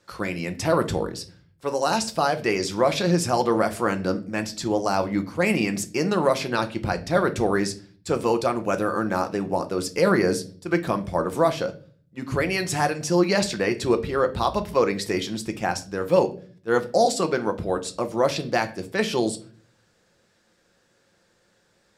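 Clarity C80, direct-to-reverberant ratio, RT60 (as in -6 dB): 21.0 dB, 8.0 dB, 0.45 s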